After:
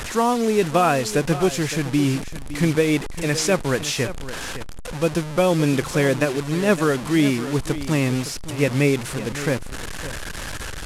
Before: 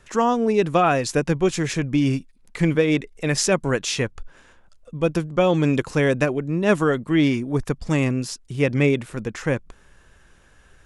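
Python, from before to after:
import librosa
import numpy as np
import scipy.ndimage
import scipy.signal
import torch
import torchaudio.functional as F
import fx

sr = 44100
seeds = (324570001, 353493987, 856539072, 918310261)

y = fx.delta_mod(x, sr, bps=64000, step_db=-24.5)
y = y + 10.0 ** (-13.5 / 20.0) * np.pad(y, (int(563 * sr / 1000.0), 0))[:len(y)]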